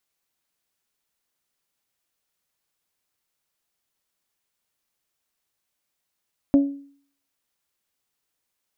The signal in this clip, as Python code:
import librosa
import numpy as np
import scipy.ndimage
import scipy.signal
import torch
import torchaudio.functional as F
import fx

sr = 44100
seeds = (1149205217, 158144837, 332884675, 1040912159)

y = fx.strike_glass(sr, length_s=0.89, level_db=-10.0, body='bell', hz=280.0, decay_s=0.52, tilt_db=12.0, modes=5)